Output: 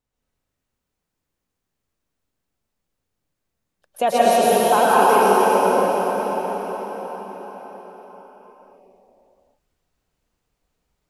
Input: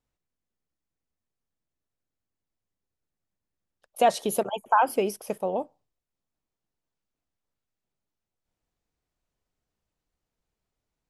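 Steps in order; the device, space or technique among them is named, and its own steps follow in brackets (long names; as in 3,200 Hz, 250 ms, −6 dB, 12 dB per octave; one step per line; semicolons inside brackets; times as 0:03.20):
cathedral (convolution reverb RT60 5.6 s, pre-delay 104 ms, DRR −10 dB)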